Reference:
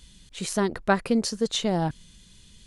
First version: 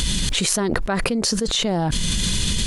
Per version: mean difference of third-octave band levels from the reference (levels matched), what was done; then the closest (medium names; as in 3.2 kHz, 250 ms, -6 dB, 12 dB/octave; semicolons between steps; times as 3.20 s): 12.5 dB: level flattener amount 100%; trim -4 dB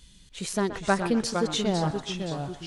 8.0 dB: ever faster or slower copies 350 ms, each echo -2 st, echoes 3, each echo -6 dB; band-passed feedback delay 125 ms, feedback 41%, band-pass 1.2 kHz, level -9.5 dB; trim -2 dB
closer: second